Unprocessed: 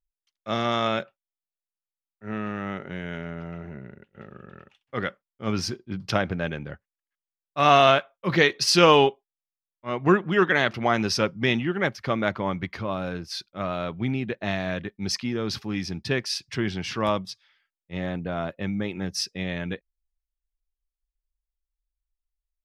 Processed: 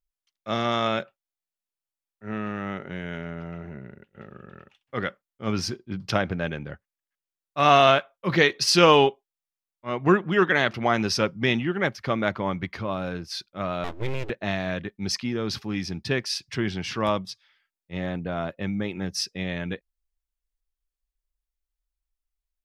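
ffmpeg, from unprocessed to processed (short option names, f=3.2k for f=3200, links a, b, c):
-filter_complex "[0:a]asettb=1/sr,asplit=3[a][b][c];[a]atrim=end=13.844[d];[b]atrim=start=13.84:end=14.3,asetpts=PTS-STARTPTS,afade=t=in:d=0.004:c=qsin,afade=t=out:st=0.456:d=0.004:c=qsin,aeval=exprs='abs(val(0))':c=same[e];[c]atrim=start=14.296[f];[d][e]acrossfade=d=0.004:c1=hsin:c2=qsin[g];[g][f]acrossfade=d=0.004:c1=qsin:c2=hsin"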